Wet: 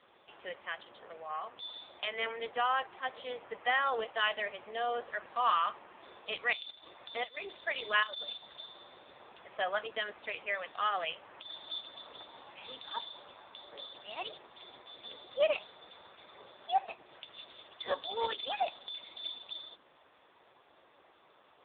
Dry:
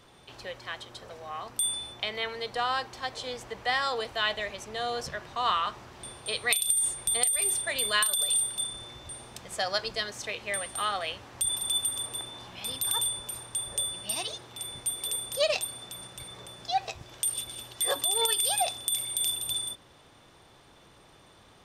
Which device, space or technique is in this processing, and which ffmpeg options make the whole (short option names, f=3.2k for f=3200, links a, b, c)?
telephone: -filter_complex "[0:a]asettb=1/sr,asplit=3[a][b][c];[a]atrim=end=2.174[d];[b]atrim=start=2.17:end=2.73,asetpts=PTS-STARTPTS,afade=t=in:d=0.004:c=qsin,afade=t=out:st=0.556:d=0.004:c=qsin,highpass=190[e];[c]atrim=start=2.726[f];[d][e]acrossfade=d=0.004:c1=hsin:c2=qsin[g];[g][f]acrossfade=d=0.004:c1=qsin:c2=hsin,highpass=380,lowpass=3.3k" -ar 8000 -c:a libopencore_amrnb -b:a 5900